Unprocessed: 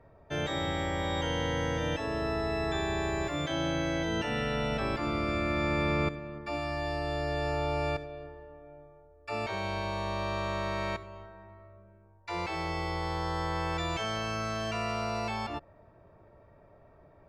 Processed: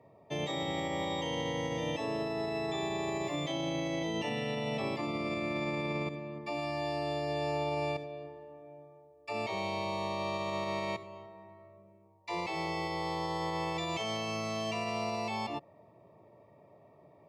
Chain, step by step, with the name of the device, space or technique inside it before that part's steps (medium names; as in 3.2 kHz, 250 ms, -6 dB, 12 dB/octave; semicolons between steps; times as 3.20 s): PA system with an anti-feedback notch (high-pass 120 Hz 24 dB/octave; Butterworth band-stop 1.5 kHz, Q 2.2; peak limiter -25.5 dBFS, peak gain reduction 7 dB)